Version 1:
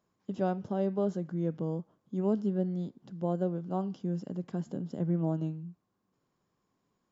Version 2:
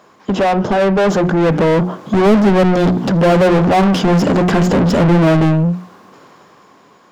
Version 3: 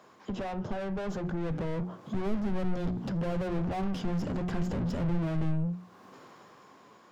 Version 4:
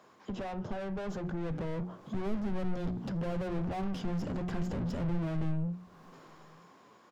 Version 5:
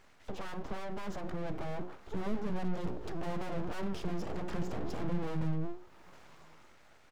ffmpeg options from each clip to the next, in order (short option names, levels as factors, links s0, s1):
-filter_complex "[0:a]dynaudnorm=f=260:g=13:m=5.01,bandreject=f=60:t=h:w=6,bandreject=f=120:t=h:w=6,bandreject=f=180:t=h:w=6,bandreject=f=240:t=h:w=6,bandreject=f=300:t=h:w=6,bandreject=f=360:t=h:w=6,asplit=2[s0][s1];[s1]highpass=f=720:p=1,volume=63.1,asoftclip=type=tanh:threshold=0.251[s2];[s0][s2]amix=inputs=2:normalize=0,lowpass=f=2100:p=1,volume=0.501,volume=2.11"
-filter_complex "[0:a]acrossover=split=130[s0][s1];[s1]acompressor=threshold=0.0141:ratio=2[s2];[s0][s2]amix=inputs=2:normalize=0,flanger=delay=7.6:depth=1.4:regen=81:speed=1.8:shape=sinusoidal,volume=0.596"
-filter_complex "[0:a]asplit=2[s0][s1];[s1]adelay=932.9,volume=0.0398,highshelf=f=4000:g=-21[s2];[s0][s2]amix=inputs=2:normalize=0,volume=0.708"
-af "aeval=exprs='abs(val(0))':c=same"